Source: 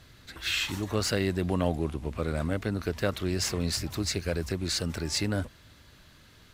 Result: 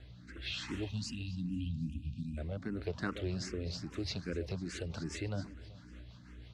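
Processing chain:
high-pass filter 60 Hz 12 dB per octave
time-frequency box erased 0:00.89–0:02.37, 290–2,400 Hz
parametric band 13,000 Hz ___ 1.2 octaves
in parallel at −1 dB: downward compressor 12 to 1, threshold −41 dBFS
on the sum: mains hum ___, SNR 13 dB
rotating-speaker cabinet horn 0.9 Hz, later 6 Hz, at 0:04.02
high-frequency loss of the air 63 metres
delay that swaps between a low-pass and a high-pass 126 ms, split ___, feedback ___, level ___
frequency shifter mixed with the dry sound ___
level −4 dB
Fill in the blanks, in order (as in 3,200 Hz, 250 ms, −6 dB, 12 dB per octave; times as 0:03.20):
−7.5 dB, 60 Hz, 930 Hz, 67%, −13.5 dB, +2.5 Hz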